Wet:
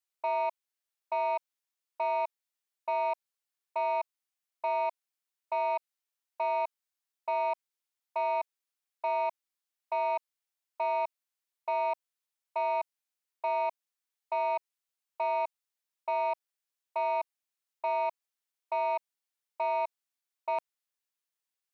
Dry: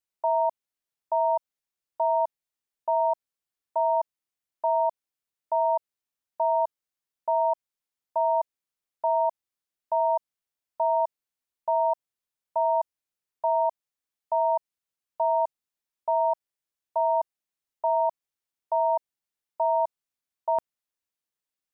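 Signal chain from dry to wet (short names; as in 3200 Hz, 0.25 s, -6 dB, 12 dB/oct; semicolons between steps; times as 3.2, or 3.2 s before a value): soft clip -21.5 dBFS, distortion -16 dB; HPF 780 Hz 6 dB/oct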